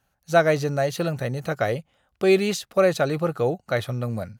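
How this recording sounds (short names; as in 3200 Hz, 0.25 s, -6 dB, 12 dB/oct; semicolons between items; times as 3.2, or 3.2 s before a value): noise floor -73 dBFS; spectral tilt -5.0 dB/oct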